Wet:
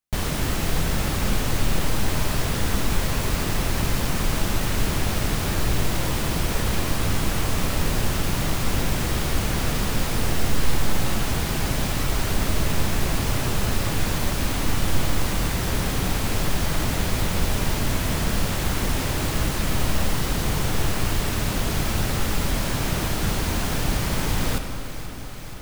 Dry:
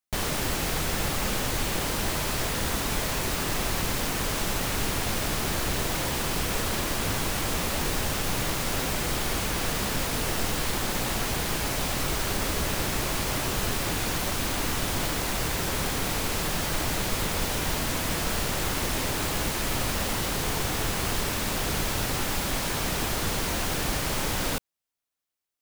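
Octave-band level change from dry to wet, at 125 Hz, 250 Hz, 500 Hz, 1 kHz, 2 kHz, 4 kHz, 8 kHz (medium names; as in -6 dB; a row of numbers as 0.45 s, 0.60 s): +7.5 dB, +5.0 dB, +2.0 dB, +1.0 dB, +1.0 dB, +0.5 dB, 0.0 dB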